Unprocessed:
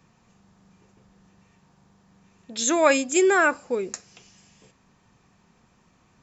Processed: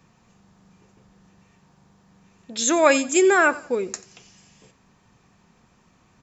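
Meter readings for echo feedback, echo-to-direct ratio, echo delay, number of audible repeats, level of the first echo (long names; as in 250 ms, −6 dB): 34%, −19.0 dB, 88 ms, 2, −19.5 dB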